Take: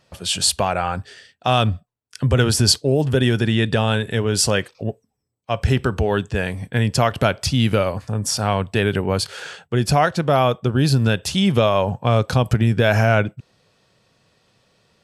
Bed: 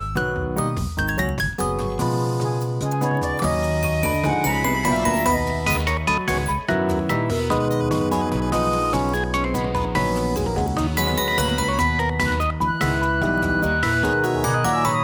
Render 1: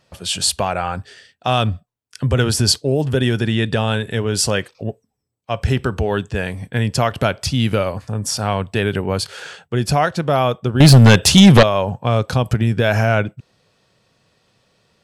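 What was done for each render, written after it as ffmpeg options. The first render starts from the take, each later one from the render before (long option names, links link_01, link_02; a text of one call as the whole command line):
ffmpeg -i in.wav -filter_complex "[0:a]asettb=1/sr,asplit=3[link_01][link_02][link_03];[link_01]atrim=end=10.804[link_04];[link_02]atrim=start=10.8:end=11.63,asetpts=PTS-STARTPTS,afade=type=in:duration=0.004:curve=qsin,afade=type=out:start_time=0.826:duration=0.004:curve=qsin,aeval=exprs='0.708*sin(PI/2*2.82*val(0)/0.708)':channel_layout=same[link_05];[link_03]atrim=start=11.626[link_06];[link_04][link_05]acrossfade=duration=0.004:curve1=hsin:curve2=qsin[link_07];[link_07][link_06]acrossfade=duration=0.004:curve1=qsin:curve2=hsin" out.wav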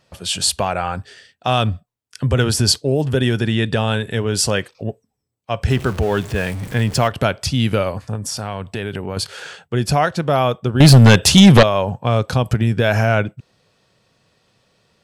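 ffmpeg -i in.wav -filter_complex "[0:a]asettb=1/sr,asplit=3[link_01][link_02][link_03];[link_01]atrim=end=5.704[link_04];[link_02]atrim=start=5.7:end=7.08,asetpts=PTS-STARTPTS,afade=type=in:duration=0.004:curve=qsin,afade=type=out:start_time=1.376:duration=0.004:curve=qsin,aeval=exprs='val(0)+0.5*0.0376*sgn(val(0))':channel_layout=same[link_05];[link_03]atrim=start=7.076[link_06];[link_04][link_05]acrossfade=duration=0.004:curve1=hsin:curve2=qsin[link_07];[link_07][link_06]acrossfade=duration=0.004:curve1=qsin:curve2=hsin,asettb=1/sr,asplit=3[link_08][link_09][link_10];[link_08]atrim=end=8.154[link_11];[link_09]atrim=start=8.15:end=9.17,asetpts=PTS-STARTPTS,afade=type=in:duration=0.004:curve=qsin,afade=type=out:start_time=1.016:duration=0.004:curve=qsin,acompressor=threshold=-23dB:ratio=2.5:attack=3.2:release=140:knee=1:detection=peak[link_12];[link_10]atrim=start=9.166[link_13];[link_11][link_12]acrossfade=duration=0.004:curve1=hsin:curve2=qsin[link_14];[link_14][link_13]acrossfade=duration=0.004:curve1=qsin:curve2=hsin" out.wav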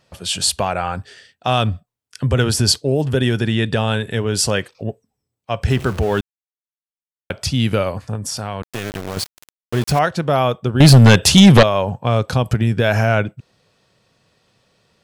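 ffmpeg -i in.wav -filter_complex "[0:a]asettb=1/sr,asplit=3[link_01][link_02][link_03];[link_01]atrim=end=8.624[link_04];[link_02]atrim=start=8.62:end=9.99,asetpts=PTS-STARTPTS,afade=type=in:duration=0.004:curve=qsin,afade=type=out:start_time=1.366:duration=0.004:curve=qsin,aeval=exprs='val(0)*gte(abs(val(0)),0.0668)':channel_layout=same[link_05];[link_03]atrim=start=9.986[link_06];[link_04][link_05]acrossfade=duration=0.004:curve1=hsin:curve2=qsin[link_07];[link_07][link_06]acrossfade=duration=0.004:curve1=qsin:curve2=hsin,asplit=3[link_08][link_09][link_10];[link_08]atrim=end=6.21,asetpts=PTS-STARTPTS,afade=type=out:start_time=6.206:duration=0.004:curve=hsin[link_11];[link_09]atrim=start=6.21:end=7.3,asetpts=PTS-STARTPTS,volume=0[link_12];[link_10]atrim=start=7.3,asetpts=PTS-STARTPTS,afade=type=in:duration=0.004:curve=hsin[link_13];[link_11][link_12][link_13]concat=n=3:v=0:a=1" out.wav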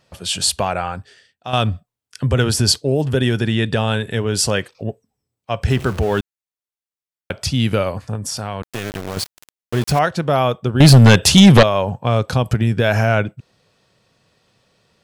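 ffmpeg -i in.wav -filter_complex "[0:a]asplit=2[link_01][link_02];[link_01]atrim=end=1.53,asetpts=PTS-STARTPTS,afade=type=out:start_time=0.76:duration=0.77:curve=qua:silence=0.334965[link_03];[link_02]atrim=start=1.53,asetpts=PTS-STARTPTS,afade=type=in:duration=0.004:curve=hsin:silence=0.334965[link_04];[link_03][link_04]concat=n=2:v=0:a=1" out.wav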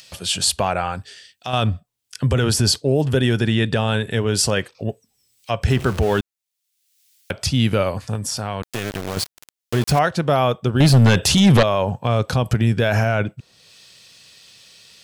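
ffmpeg -i in.wav -filter_complex "[0:a]acrossover=split=2400[link_01][link_02];[link_02]acompressor=mode=upward:threshold=-31dB:ratio=2.5[link_03];[link_01][link_03]amix=inputs=2:normalize=0,alimiter=limit=-7.5dB:level=0:latency=1:release=14" out.wav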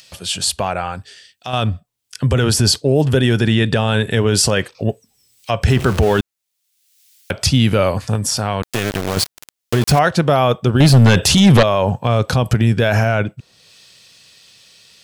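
ffmpeg -i in.wav -af "dynaudnorm=framelen=310:gausssize=17:maxgain=11.5dB,alimiter=limit=-4.5dB:level=0:latency=1:release=21" out.wav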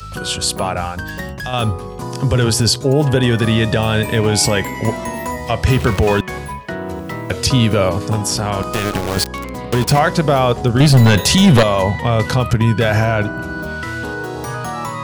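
ffmpeg -i in.wav -i bed.wav -filter_complex "[1:a]volume=-4.5dB[link_01];[0:a][link_01]amix=inputs=2:normalize=0" out.wav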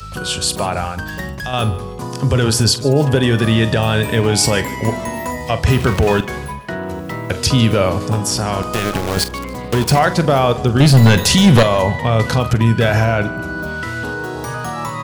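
ffmpeg -i in.wav -filter_complex "[0:a]asplit=2[link_01][link_02];[link_02]adelay=44,volume=-14dB[link_03];[link_01][link_03]amix=inputs=2:normalize=0,aecho=1:1:148|296|444:0.106|0.0381|0.0137" out.wav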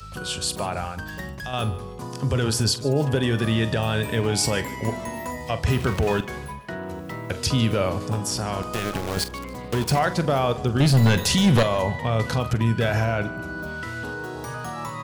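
ffmpeg -i in.wav -af "volume=-8dB" out.wav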